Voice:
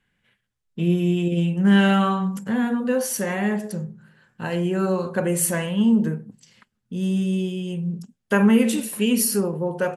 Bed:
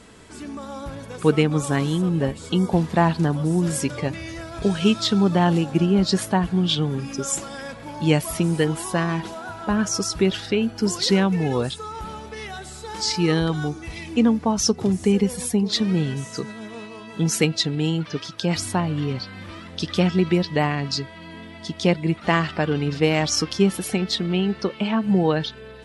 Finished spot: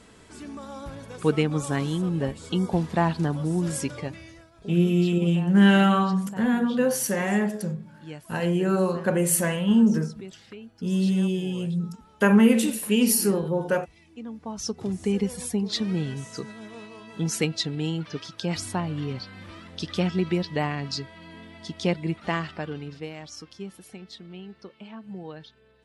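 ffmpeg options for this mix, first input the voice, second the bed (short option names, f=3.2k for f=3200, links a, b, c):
-filter_complex "[0:a]adelay=3900,volume=-0.5dB[a];[1:a]volume=11.5dB,afade=t=out:st=3.81:d=0.7:silence=0.141254,afade=t=in:st=14.24:d=0.96:silence=0.158489,afade=t=out:st=22.03:d=1.11:silence=0.199526[b];[a][b]amix=inputs=2:normalize=0"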